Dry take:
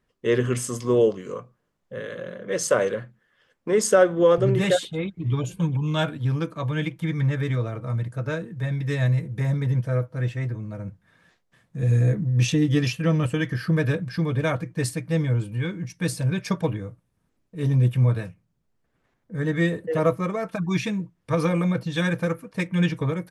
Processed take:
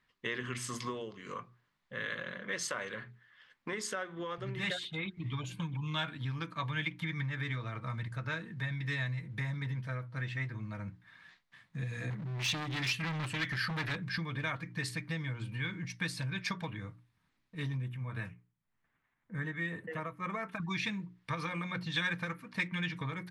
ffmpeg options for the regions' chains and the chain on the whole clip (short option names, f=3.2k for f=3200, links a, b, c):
-filter_complex "[0:a]asettb=1/sr,asplit=3[a][b][c];[a]atrim=end=12.104[d];[b]atrim=start=12.1:end=13.96,asetpts=PTS-STARTPTS,afade=t=in:d=0.004:c=qsin,afade=t=out:st=1.856:d=0.004:c=qsin,highshelf=f=3.7k:g=5,asoftclip=type=hard:threshold=-25.5dB[e];[c]atrim=start=13.956[f];[d][e]acrossfade=d=0.004:c1=hsin:c2=qsin[g];[g][f]acrossfade=d=0.004:c1=qsin:c2=hsin,asettb=1/sr,asplit=3[h][i][j];[h]atrim=end=17.774[k];[i]atrim=start=17.77:end=20.6,asetpts=PTS-STARTPTS,afade=t=in:d=0.004:c=qsin,afade=t=out:st=2.826:d=0.004:c=qsin,equalizer=f=4.5k:t=o:w=0.86:g=-10.5,tremolo=f=1.9:d=0.63[l];[j]atrim=start=20.596[m];[k][l]acrossfade=d=0.004:c1=hsin:c2=qsin[n];[n][m]acrossfade=d=0.004:c1=qsin:c2=hsin,bandreject=f=60:t=h:w=6,bandreject=f=120:t=h:w=6,bandreject=f=180:t=h:w=6,bandreject=f=240:t=h:w=6,bandreject=f=300:t=h:w=6,bandreject=f=360:t=h:w=6,bandreject=f=420:t=h:w=6,acompressor=threshold=-29dB:ratio=6,equalizer=f=125:t=o:w=1:g=3,equalizer=f=250:t=o:w=1:g=3,equalizer=f=500:t=o:w=1:g=-6,equalizer=f=1k:t=o:w=1:g=8,equalizer=f=2k:t=o:w=1:g=11,equalizer=f=4k:t=o:w=1:g=11,volume=-9dB"